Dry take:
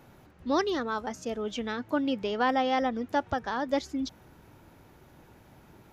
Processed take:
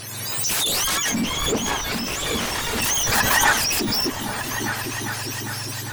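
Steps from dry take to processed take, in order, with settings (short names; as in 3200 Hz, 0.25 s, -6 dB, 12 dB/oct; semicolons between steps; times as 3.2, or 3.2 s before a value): spectrum mirrored in octaves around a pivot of 1200 Hz; high shelf 2400 Hz +12 dB; in parallel at -3 dB: compressor, threshold -32 dBFS, peak gain reduction 13.5 dB; on the sum: sine folder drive 18 dB, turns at -9.5 dBFS; flange 0.9 Hz, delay 0.2 ms, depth 3.2 ms, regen -81%; 1.11–2.82 overdrive pedal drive 29 dB, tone 1500 Hz, clips at -9.5 dBFS; 2.97–3.52 spectral gain 570–2000 Hz +9 dB; repeats that get brighter 0.402 s, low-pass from 200 Hz, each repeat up 2 oct, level -3 dB; backwards sustainer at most 31 dB/s; gain -5 dB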